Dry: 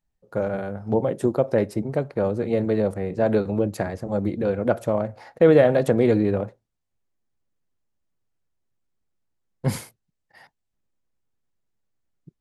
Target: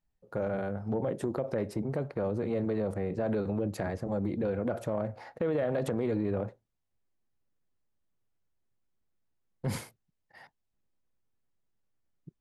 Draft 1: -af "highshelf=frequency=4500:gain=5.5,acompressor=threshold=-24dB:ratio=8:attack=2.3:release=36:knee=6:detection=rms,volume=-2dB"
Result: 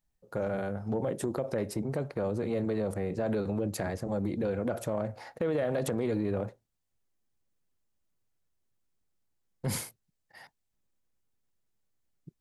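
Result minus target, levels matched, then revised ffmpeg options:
8,000 Hz band +8.5 dB
-af "highshelf=frequency=4500:gain=-6,acompressor=threshold=-24dB:ratio=8:attack=2.3:release=36:knee=6:detection=rms,volume=-2dB"

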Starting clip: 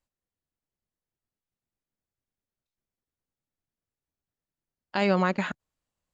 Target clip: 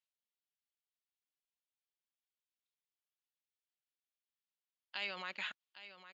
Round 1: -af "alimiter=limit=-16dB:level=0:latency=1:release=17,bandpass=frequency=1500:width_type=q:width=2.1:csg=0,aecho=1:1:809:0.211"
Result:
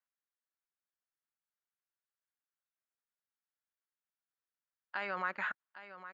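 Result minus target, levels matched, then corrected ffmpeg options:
4,000 Hz band −13.5 dB
-af "alimiter=limit=-16dB:level=0:latency=1:release=17,bandpass=frequency=3200:width_type=q:width=2.1:csg=0,aecho=1:1:809:0.211"

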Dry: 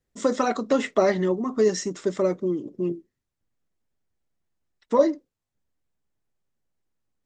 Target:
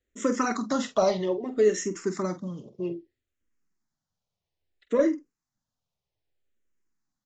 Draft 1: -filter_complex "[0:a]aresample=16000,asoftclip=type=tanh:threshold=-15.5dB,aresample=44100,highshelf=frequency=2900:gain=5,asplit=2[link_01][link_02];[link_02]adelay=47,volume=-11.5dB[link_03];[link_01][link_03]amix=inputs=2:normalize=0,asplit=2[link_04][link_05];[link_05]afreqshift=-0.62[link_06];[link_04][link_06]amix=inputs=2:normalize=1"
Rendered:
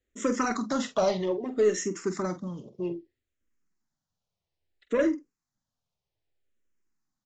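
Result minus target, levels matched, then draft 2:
soft clipping: distortion +10 dB
-filter_complex "[0:a]aresample=16000,asoftclip=type=tanh:threshold=-8dB,aresample=44100,highshelf=frequency=2900:gain=5,asplit=2[link_01][link_02];[link_02]adelay=47,volume=-11.5dB[link_03];[link_01][link_03]amix=inputs=2:normalize=0,asplit=2[link_04][link_05];[link_05]afreqshift=-0.62[link_06];[link_04][link_06]amix=inputs=2:normalize=1"

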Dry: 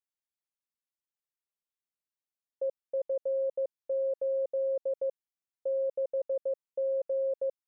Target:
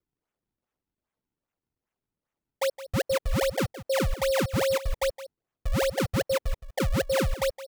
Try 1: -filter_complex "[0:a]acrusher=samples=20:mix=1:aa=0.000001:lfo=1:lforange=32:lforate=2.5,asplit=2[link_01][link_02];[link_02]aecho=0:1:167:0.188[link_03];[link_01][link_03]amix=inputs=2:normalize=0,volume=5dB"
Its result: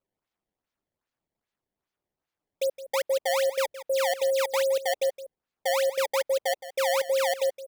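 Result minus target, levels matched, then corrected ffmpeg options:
sample-and-hold swept by an LFO: distortion −10 dB
-filter_complex "[0:a]acrusher=samples=44:mix=1:aa=0.000001:lfo=1:lforange=70.4:lforate=2.5,asplit=2[link_01][link_02];[link_02]aecho=0:1:167:0.188[link_03];[link_01][link_03]amix=inputs=2:normalize=0,volume=5dB"

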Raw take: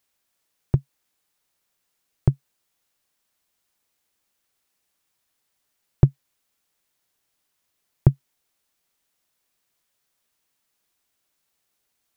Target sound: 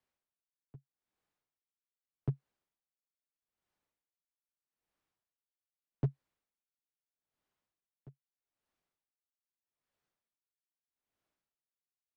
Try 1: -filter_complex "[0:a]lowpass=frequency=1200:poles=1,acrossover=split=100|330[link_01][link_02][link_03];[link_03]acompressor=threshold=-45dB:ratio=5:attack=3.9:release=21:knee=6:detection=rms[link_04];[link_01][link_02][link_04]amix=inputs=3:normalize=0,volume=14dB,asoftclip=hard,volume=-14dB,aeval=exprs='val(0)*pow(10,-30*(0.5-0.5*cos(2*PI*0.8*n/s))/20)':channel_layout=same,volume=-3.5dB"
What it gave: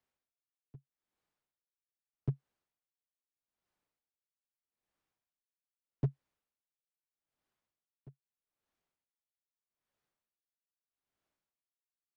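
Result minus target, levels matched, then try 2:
downward compressor: peak gain reduction +9.5 dB
-filter_complex "[0:a]lowpass=frequency=1200:poles=1,acrossover=split=100|330[link_01][link_02][link_03];[link_03]acompressor=threshold=-33dB:ratio=5:attack=3.9:release=21:knee=6:detection=rms[link_04];[link_01][link_02][link_04]amix=inputs=3:normalize=0,volume=14dB,asoftclip=hard,volume=-14dB,aeval=exprs='val(0)*pow(10,-30*(0.5-0.5*cos(2*PI*0.8*n/s))/20)':channel_layout=same,volume=-3.5dB"

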